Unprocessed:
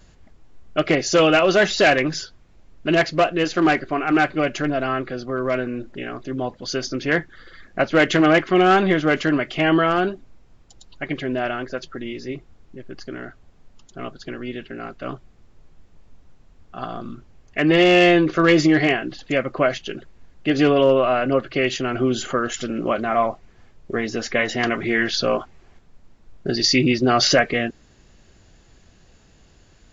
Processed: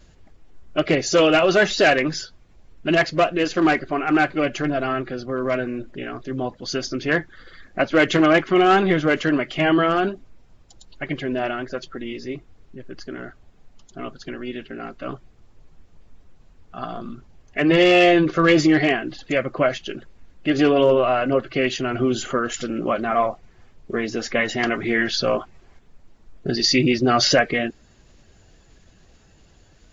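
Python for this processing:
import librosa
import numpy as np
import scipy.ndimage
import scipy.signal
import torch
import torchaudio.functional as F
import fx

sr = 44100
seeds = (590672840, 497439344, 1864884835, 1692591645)

y = fx.spec_quant(x, sr, step_db=15)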